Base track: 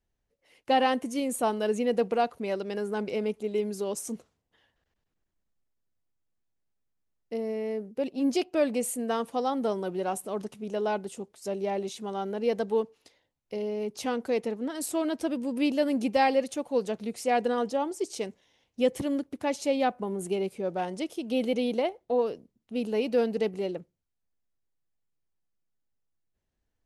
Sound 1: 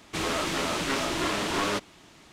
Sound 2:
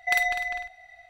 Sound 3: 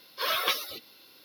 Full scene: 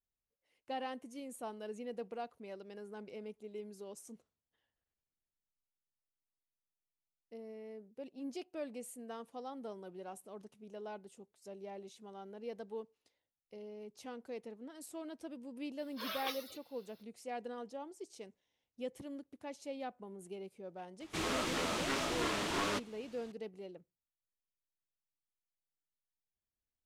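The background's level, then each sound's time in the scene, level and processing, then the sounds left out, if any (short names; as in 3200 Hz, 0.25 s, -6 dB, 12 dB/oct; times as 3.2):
base track -17 dB
15.79 add 3 -14 dB
21 add 1 -7.5 dB
not used: 2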